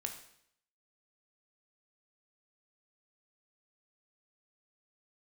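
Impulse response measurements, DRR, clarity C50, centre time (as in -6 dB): 4.0 dB, 8.5 dB, 18 ms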